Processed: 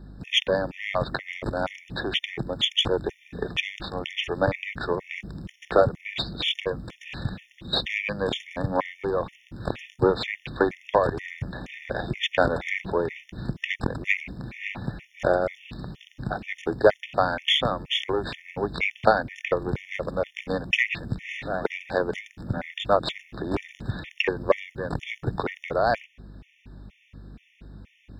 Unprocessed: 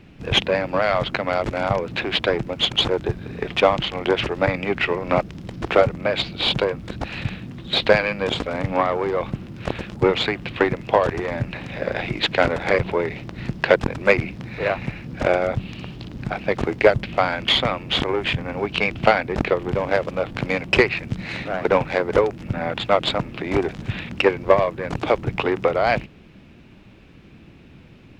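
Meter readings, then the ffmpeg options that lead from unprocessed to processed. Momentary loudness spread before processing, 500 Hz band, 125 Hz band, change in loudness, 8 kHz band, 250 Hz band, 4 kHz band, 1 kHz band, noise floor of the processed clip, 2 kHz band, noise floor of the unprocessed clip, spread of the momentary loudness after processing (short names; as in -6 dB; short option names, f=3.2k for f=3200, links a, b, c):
11 LU, -6.0 dB, -5.5 dB, -5.0 dB, n/a, -5.5 dB, -4.0 dB, -5.0 dB, -62 dBFS, -5.0 dB, -46 dBFS, 13 LU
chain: -af "aeval=exprs='val(0)+0.01*(sin(2*PI*50*n/s)+sin(2*PI*2*50*n/s)/2+sin(2*PI*3*50*n/s)/3+sin(2*PI*4*50*n/s)/4+sin(2*PI*5*50*n/s)/5)':c=same,afftfilt=real='re*gt(sin(2*PI*2.1*pts/sr)*(1-2*mod(floor(b*sr/1024/1800),2)),0)':imag='im*gt(sin(2*PI*2.1*pts/sr)*(1-2*mod(floor(b*sr/1024/1800),2)),0)':win_size=1024:overlap=0.75,volume=-2.5dB"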